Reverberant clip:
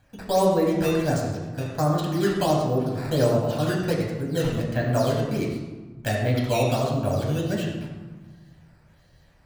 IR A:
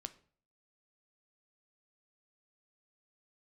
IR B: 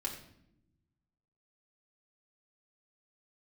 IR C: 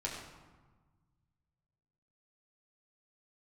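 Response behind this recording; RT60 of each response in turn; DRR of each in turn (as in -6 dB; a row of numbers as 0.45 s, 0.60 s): C; 0.50 s, no single decay rate, 1.4 s; 10.0 dB, -2.0 dB, -3.0 dB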